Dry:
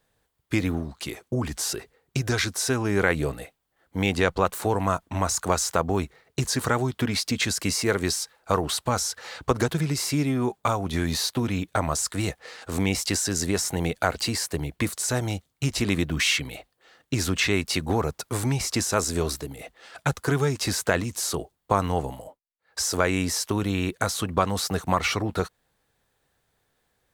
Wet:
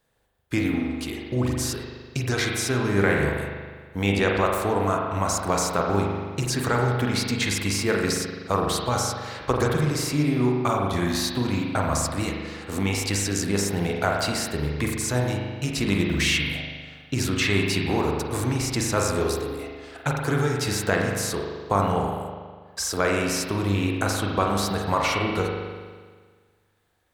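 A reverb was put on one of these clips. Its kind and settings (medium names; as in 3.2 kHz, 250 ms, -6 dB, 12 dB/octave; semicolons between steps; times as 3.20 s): spring tank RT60 1.6 s, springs 40 ms, chirp 20 ms, DRR -0.5 dB; trim -1.5 dB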